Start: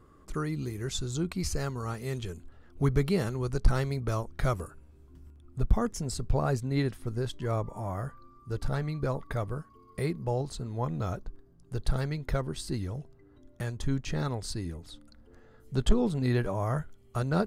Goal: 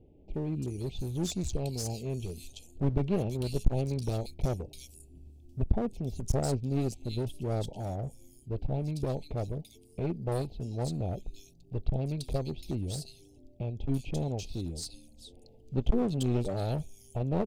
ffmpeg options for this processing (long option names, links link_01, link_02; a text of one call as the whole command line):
ffmpeg -i in.wav -filter_complex "[0:a]asuperstop=centerf=1400:order=12:qfactor=0.91,acrossover=split=2800[link_01][link_02];[link_02]adelay=340[link_03];[link_01][link_03]amix=inputs=2:normalize=0,aeval=exprs='clip(val(0),-1,0.0251)':channel_layout=same" out.wav